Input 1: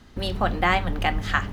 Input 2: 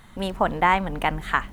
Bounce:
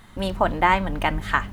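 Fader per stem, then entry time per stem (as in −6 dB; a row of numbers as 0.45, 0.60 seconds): −7.0, +0.5 decibels; 0.00, 0.00 seconds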